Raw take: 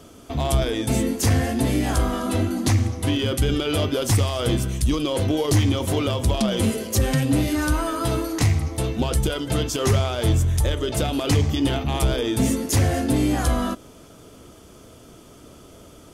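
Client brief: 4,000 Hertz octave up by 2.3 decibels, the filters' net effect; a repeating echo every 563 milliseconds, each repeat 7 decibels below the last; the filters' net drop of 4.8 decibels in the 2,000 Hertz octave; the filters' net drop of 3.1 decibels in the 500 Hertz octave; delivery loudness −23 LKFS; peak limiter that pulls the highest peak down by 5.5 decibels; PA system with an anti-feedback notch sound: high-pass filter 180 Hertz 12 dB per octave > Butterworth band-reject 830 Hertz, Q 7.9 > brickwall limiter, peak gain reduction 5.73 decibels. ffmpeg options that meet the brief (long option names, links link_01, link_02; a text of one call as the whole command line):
ffmpeg -i in.wav -af "equalizer=frequency=500:width_type=o:gain=-3.5,equalizer=frequency=2000:width_type=o:gain=-8,equalizer=frequency=4000:width_type=o:gain=6,alimiter=limit=-15.5dB:level=0:latency=1,highpass=180,asuperstop=centerf=830:order=8:qfactor=7.9,aecho=1:1:563|1126|1689|2252|2815:0.447|0.201|0.0905|0.0407|0.0183,volume=5dB,alimiter=limit=-13.5dB:level=0:latency=1" out.wav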